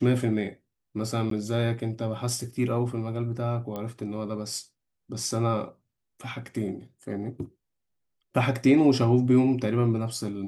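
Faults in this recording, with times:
1.30–1.31 s: dropout 13 ms
3.76 s: pop -21 dBFS

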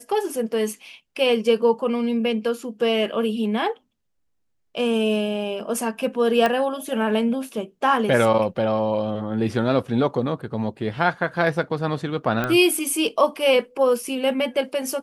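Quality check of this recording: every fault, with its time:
6.46 s: pop -9 dBFS
12.44 s: pop -11 dBFS

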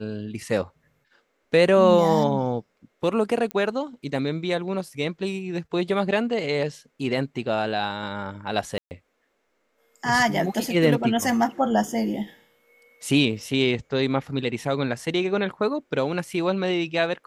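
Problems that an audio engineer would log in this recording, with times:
3.51 s: pop -15 dBFS
8.78–8.91 s: dropout 129 ms

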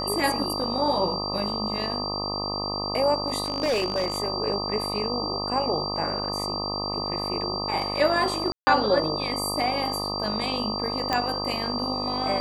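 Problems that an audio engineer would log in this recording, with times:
buzz 50 Hz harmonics 25 -32 dBFS
whine 4.7 kHz -30 dBFS
3.44–4.18 s: clipped -19.5 dBFS
8.52–8.67 s: dropout 150 ms
11.13 s: pop -10 dBFS

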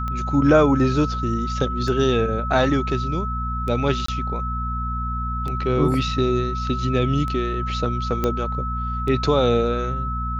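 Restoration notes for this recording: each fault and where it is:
hum 60 Hz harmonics 4 -27 dBFS
tick 33 1/3 rpm -17 dBFS
whine 1.3 kHz -27 dBFS
4.06–4.08 s: dropout 24 ms
8.24 s: pop -9 dBFS

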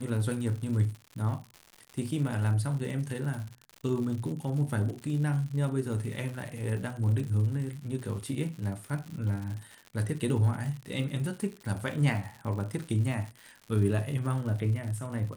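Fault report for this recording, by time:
crackle 130 per s -37 dBFS

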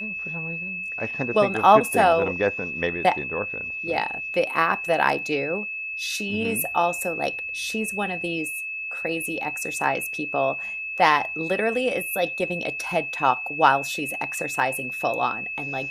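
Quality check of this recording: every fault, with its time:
whine 2.6 kHz -29 dBFS

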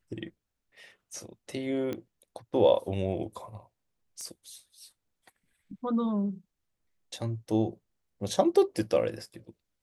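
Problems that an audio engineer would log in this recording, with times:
1.93 s: pop -21 dBFS
4.21 s: pop -29 dBFS

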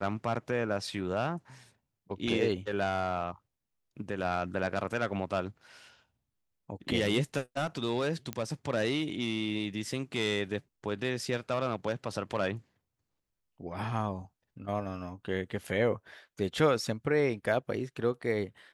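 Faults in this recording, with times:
8.33 s: pop -19 dBFS

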